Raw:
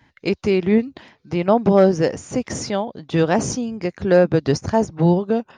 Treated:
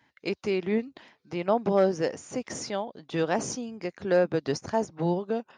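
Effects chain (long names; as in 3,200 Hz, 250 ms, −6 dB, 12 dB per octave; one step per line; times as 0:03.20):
high-pass filter 300 Hz 6 dB per octave
level −7 dB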